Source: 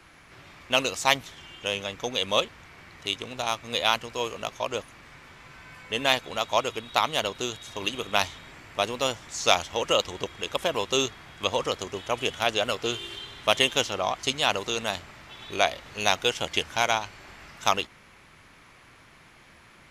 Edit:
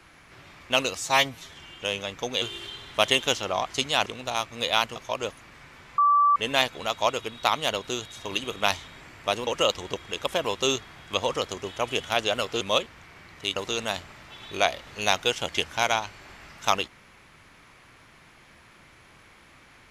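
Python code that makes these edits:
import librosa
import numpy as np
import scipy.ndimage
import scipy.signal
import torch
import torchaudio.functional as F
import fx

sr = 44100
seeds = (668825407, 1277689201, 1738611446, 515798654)

y = fx.edit(x, sr, fx.stretch_span(start_s=0.95, length_s=0.38, factor=1.5),
    fx.swap(start_s=2.23, length_s=0.95, other_s=12.91, other_length_s=1.64),
    fx.cut(start_s=4.08, length_s=0.39),
    fx.bleep(start_s=5.49, length_s=0.38, hz=1160.0, db=-16.0),
    fx.cut(start_s=8.98, length_s=0.79), tone=tone)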